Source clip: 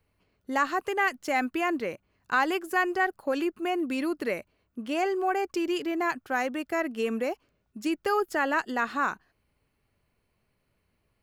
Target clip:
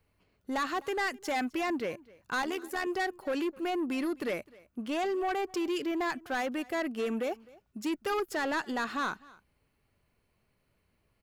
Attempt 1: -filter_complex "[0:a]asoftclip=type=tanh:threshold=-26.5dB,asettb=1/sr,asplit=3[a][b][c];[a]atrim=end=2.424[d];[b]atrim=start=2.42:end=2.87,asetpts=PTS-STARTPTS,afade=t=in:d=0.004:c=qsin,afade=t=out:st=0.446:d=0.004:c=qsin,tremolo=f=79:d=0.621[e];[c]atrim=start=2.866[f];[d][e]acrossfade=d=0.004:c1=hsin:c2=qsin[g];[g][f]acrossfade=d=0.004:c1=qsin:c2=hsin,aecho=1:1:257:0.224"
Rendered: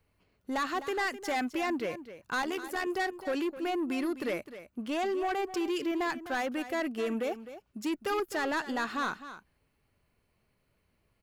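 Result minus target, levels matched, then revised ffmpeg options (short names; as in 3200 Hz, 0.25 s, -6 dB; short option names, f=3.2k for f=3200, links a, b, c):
echo-to-direct +10 dB
-filter_complex "[0:a]asoftclip=type=tanh:threshold=-26.5dB,asettb=1/sr,asplit=3[a][b][c];[a]atrim=end=2.424[d];[b]atrim=start=2.42:end=2.87,asetpts=PTS-STARTPTS,afade=t=in:d=0.004:c=qsin,afade=t=out:st=0.446:d=0.004:c=qsin,tremolo=f=79:d=0.621[e];[c]atrim=start=2.866[f];[d][e]acrossfade=d=0.004:c1=hsin:c2=qsin[g];[g][f]acrossfade=d=0.004:c1=qsin:c2=hsin,aecho=1:1:257:0.0708"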